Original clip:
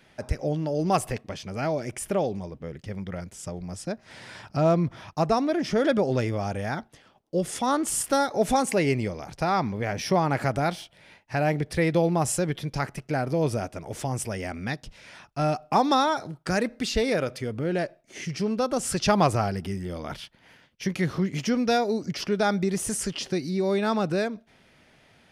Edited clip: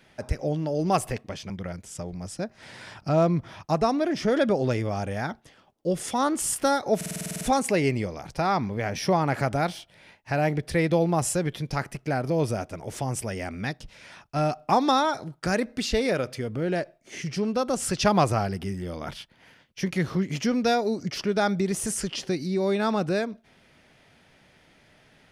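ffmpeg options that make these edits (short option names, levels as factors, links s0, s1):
-filter_complex "[0:a]asplit=11[s0][s1][s2][s3][s4][s5][s6][s7][s8][s9][s10];[s0]atrim=end=1.502[s11];[s1]atrim=start=2.978:end=8.492[s12];[s2]atrim=start=8.438:end=8.492[s13];[s3]atrim=start=8.438:end=8.492[s14];[s4]atrim=start=8.438:end=8.492[s15];[s5]atrim=start=8.438:end=8.492[s16];[s6]atrim=start=8.438:end=8.492[s17];[s7]atrim=start=8.438:end=8.492[s18];[s8]atrim=start=8.438:end=8.492[s19];[s9]atrim=start=8.438:end=8.492[s20];[s10]atrim=start=8.438[s21];[s11][s12]acrossfade=d=0.004:c1=hsin:c2=hsin[s22];[s22][s13]acrossfade=d=0.004:c1=hsin:c2=hsin[s23];[s23][s14]acrossfade=d=0.004:c1=hsin:c2=hsin[s24];[s24][s15]acrossfade=d=0.004:c1=hsin:c2=hsin[s25];[s25][s16]acrossfade=d=0.004:c1=hsin:c2=hsin[s26];[s26][s17]acrossfade=d=0.004:c1=hsin:c2=hsin[s27];[s27][s18]acrossfade=d=0.004:c1=hsin:c2=hsin[s28];[s28][s19]acrossfade=d=0.004:c1=hsin:c2=hsin[s29];[s29][s20]acrossfade=d=0.004:c1=hsin:c2=hsin[s30];[s30][s21]acrossfade=d=0.004:c1=hsin:c2=hsin"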